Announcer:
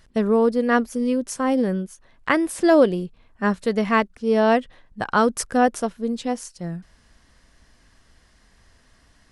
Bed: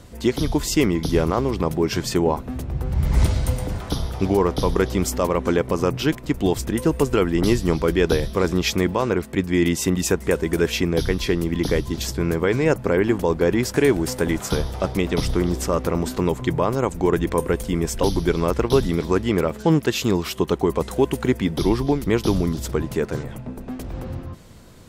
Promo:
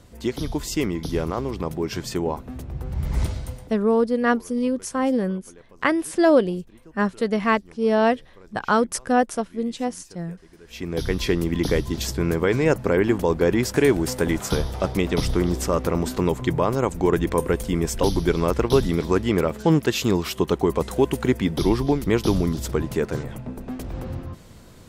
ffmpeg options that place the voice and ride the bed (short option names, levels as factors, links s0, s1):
-filter_complex "[0:a]adelay=3550,volume=0.891[s0];[1:a]volume=14.1,afade=t=out:st=3.18:d=0.62:silence=0.0668344,afade=t=in:st=10.66:d=0.55:silence=0.0375837[s1];[s0][s1]amix=inputs=2:normalize=0"